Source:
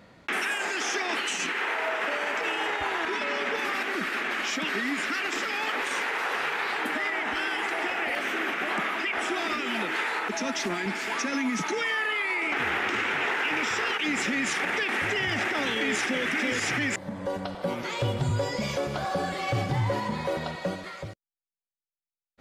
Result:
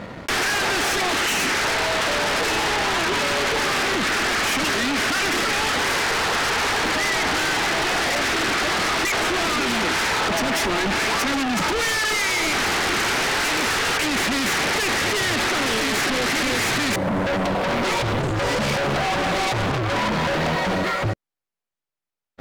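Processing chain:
high-shelf EQ 3,200 Hz −11 dB
leveller curve on the samples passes 2
brickwall limiter −23 dBFS, peak gain reduction 3.5 dB
sine wavefolder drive 6 dB, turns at −23 dBFS
level +4 dB

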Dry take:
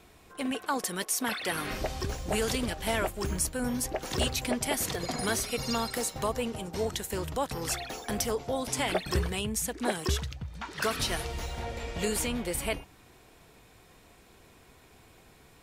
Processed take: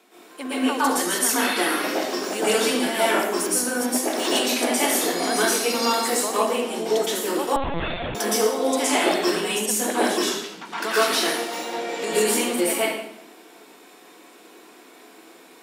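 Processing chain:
Butterworth high-pass 220 Hz 48 dB per octave
convolution reverb RT60 0.75 s, pre-delay 110 ms, DRR −9.5 dB
0:07.56–0:08.15: linear-prediction vocoder at 8 kHz pitch kept

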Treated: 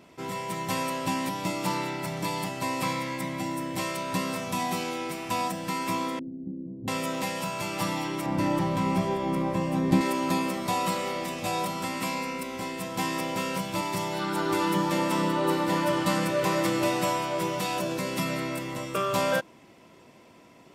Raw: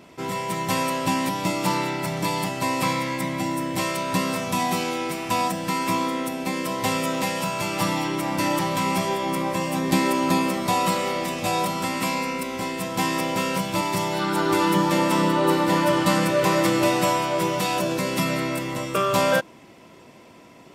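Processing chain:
0:06.19–0:06.88: inverse Chebyshev low-pass filter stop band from 1,400 Hz, stop band 70 dB
0:08.26–0:10.01: spectral tilt −2.5 dB per octave
level −5.5 dB

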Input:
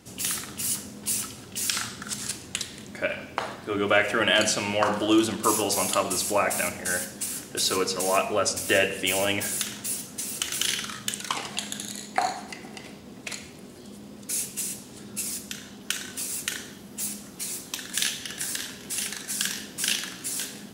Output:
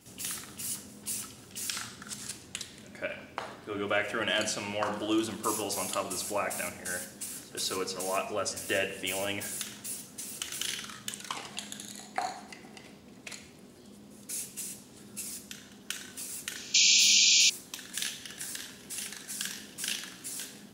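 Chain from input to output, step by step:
sound drawn into the spectrogram noise, 0:16.74–0:17.50, 2,300–7,300 Hz −14 dBFS
backwards echo 187 ms −23.5 dB
level −8 dB

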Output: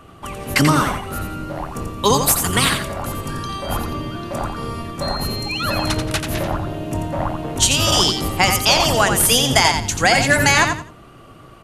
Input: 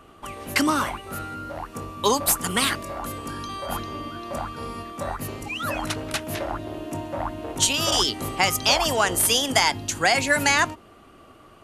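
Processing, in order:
sub-octave generator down 1 octave, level +2 dB
0:05.01–0:05.93: steady tone 4,200 Hz −31 dBFS
repeating echo 87 ms, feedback 24%, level −6.5 dB
level +4.5 dB

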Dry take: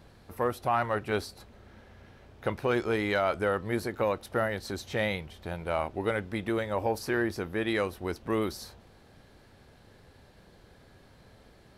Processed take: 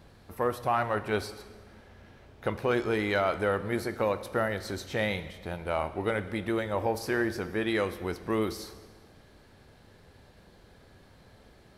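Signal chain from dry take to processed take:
dense smooth reverb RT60 1.4 s, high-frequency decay 1×, DRR 11.5 dB

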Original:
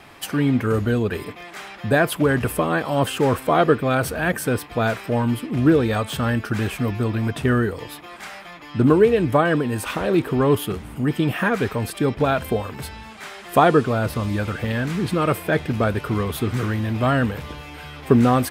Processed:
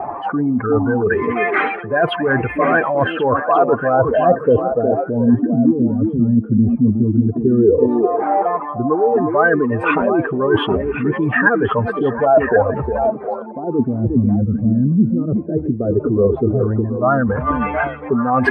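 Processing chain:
expanding power law on the bin magnitudes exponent 2
parametric band 950 Hz +14 dB 2.6 octaves
reversed playback
downward compressor 6 to 1, threshold −23 dBFS, peak gain reduction 22.5 dB
reversed playback
auto-filter low-pass sine 0.12 Hz 220–2,500 Hz
on a send: echo through a band-pass that steps 359 ms, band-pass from 300 Hz, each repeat 1.4 octaves, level −2 dB
on the sum: level +7 dB

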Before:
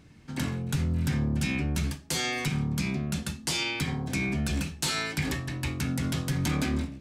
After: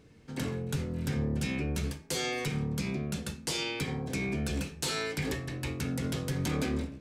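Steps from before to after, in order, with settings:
parametric band 460 Hz +11.5 dB 0.48 octaves
hum removal 80.89 Hz, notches 32
level −4 dB

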